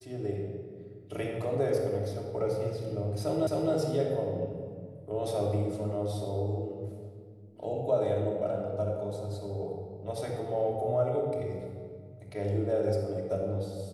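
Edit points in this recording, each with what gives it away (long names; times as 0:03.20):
0:03.47: the same again, the last 0.26 s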